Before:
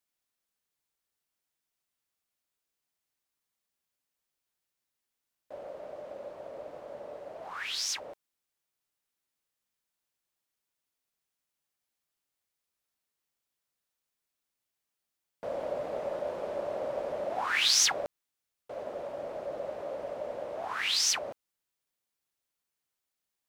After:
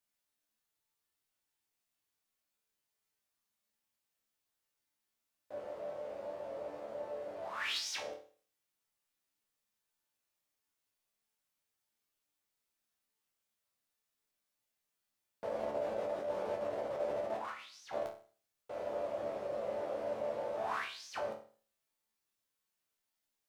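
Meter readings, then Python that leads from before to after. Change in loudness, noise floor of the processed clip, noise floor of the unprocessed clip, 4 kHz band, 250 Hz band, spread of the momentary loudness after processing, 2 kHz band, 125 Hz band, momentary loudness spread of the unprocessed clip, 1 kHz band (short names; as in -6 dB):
-9.0 dB, under -85 dBFS, under -85 dBFS, -14.5 dB, -1.0 dB, 8 LU, -9.0 dB, -2.5 dB, 18 LU, -3.5 dB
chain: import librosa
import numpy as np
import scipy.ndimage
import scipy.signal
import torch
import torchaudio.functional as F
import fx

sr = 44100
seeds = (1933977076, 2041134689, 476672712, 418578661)

y = fx.over_compress(x, sr, threshold_db=-35.0, ratio=-0.5)
y = fx.resonator_bank(y, sr, root=38, chord='sus4', decay_s=0.43)
y = F.gain(torch.from_numpy(y), 10.0).numpy()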